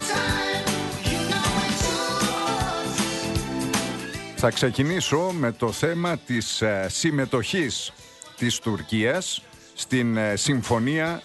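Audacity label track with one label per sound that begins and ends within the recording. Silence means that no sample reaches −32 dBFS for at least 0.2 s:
8.220000	9.380000	sound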